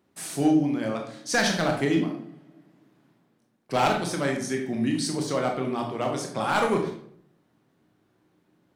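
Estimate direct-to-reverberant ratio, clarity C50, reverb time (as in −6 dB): 2.0 dB, 6.0 dB, 0.65 s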